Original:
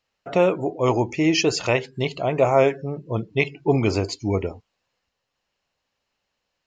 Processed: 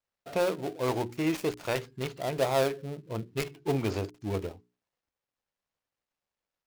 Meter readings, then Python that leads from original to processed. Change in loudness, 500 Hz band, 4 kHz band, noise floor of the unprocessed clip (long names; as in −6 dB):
−9.5 dB, −9.0 dB, −10.5 dB, −79 dBFS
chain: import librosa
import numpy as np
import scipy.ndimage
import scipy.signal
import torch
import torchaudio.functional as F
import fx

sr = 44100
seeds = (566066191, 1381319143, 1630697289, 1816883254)

y = fx.dead_time(x, sr, dead_ms=0.18)
y = fx.hum_notches(y, sr, base_hz=60, count=7)
y = y * librosa.db_to_amplitude(-8.5)